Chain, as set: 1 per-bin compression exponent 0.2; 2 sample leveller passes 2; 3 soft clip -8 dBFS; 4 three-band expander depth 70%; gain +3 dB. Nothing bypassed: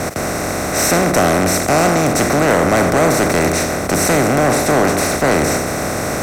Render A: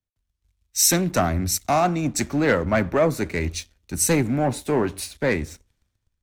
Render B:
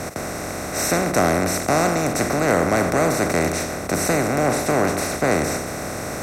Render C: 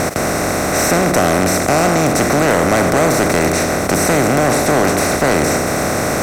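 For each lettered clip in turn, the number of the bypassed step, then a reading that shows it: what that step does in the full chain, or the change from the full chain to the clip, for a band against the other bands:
1, 2 kHz band -3.5 dB; 2, crest factor change +3.0 dB; 4, crest factor change -5.0 dB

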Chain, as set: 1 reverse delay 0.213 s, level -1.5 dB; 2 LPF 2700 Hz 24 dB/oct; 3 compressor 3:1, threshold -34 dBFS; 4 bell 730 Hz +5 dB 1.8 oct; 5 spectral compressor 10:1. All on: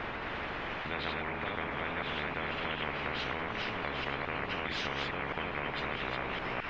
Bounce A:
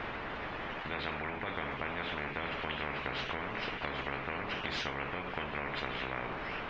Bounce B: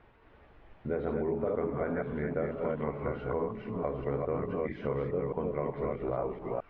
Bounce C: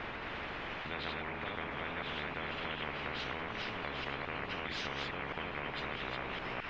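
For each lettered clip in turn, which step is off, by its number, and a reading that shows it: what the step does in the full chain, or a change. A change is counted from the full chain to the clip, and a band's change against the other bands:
1, crest factor change +3.0 dB; 5, 2 kHz band -18.5 dB; 4, loudness change -3.5 LU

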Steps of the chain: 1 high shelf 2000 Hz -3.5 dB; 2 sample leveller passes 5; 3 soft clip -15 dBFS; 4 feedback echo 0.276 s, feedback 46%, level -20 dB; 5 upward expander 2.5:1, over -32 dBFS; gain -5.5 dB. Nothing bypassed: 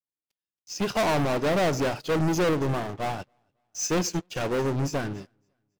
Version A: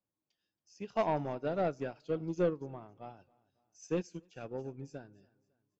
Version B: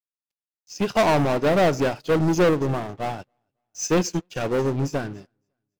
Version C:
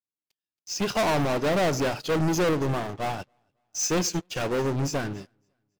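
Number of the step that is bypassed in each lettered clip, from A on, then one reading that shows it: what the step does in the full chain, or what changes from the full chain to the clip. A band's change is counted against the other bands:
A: 2, crest factor change +9.0 dB; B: 3, crest factor change +3.0 dB; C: 1, 8 kHz band +2.5 dB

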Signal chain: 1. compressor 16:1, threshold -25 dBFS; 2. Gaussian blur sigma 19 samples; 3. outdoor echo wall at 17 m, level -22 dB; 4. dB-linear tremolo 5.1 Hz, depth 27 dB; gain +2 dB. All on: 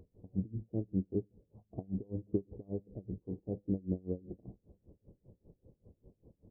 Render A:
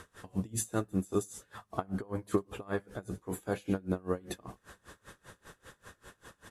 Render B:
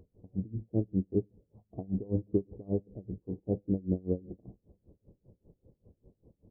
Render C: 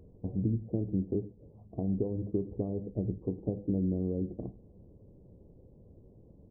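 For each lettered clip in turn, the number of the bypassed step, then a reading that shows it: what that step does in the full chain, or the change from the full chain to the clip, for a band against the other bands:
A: 2, crest factor change +2.0 dB; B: 1, mean gain reduction 2.0 dB; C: 4, crest factor change -4.0 dB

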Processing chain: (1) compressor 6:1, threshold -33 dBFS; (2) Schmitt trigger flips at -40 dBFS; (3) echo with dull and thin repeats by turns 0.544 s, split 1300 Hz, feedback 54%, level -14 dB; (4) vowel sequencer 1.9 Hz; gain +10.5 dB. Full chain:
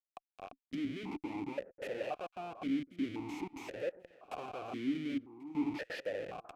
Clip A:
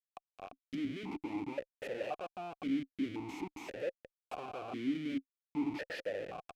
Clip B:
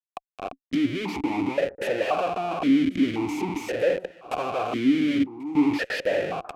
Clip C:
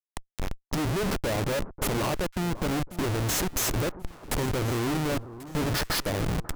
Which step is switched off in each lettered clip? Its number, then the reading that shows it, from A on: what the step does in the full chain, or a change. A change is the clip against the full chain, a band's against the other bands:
3, momentary loudness spread change -1 LU; 1, mean gain reduction 11.0 dB; 4, 125 Hz band +11.5 dB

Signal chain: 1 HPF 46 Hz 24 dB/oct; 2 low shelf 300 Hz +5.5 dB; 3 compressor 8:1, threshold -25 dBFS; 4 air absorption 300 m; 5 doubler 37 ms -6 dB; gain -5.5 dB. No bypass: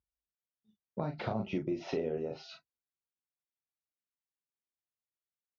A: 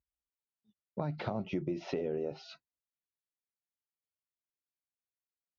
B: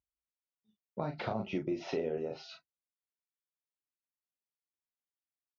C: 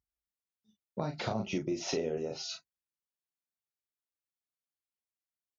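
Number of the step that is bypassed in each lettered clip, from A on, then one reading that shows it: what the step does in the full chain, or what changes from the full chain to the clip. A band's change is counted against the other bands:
5, momentary loudness spread change +2 LU; 2, 125 Hz band -3.5 dB; 4, 4 kHz band +9.0 dB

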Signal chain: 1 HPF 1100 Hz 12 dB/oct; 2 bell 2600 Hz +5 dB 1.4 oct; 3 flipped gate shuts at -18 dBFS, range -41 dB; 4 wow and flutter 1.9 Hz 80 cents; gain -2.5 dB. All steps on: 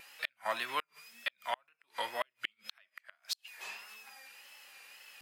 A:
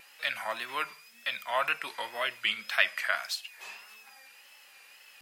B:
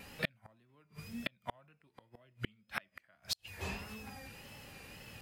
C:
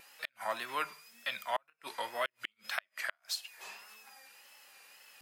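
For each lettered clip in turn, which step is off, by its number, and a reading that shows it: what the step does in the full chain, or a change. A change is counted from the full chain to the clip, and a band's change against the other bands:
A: 3, momentary loudness spread change +1 LU; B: 1, 250 Hz band +16.0 dB; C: 2, crest factor change -2.5 dB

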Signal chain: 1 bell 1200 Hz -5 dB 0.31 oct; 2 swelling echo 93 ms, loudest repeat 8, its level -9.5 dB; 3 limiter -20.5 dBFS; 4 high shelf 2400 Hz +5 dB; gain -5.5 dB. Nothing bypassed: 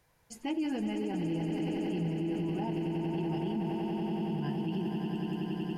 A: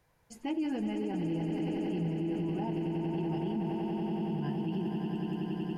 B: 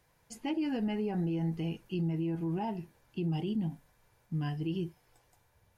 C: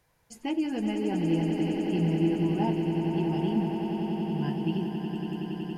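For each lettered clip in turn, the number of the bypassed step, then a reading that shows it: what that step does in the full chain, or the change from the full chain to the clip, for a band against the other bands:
4, 4 kHz band -3.0 dB; 2, momentary loudness spread change +7 LU; 3, mean gain reduction 4.0 dB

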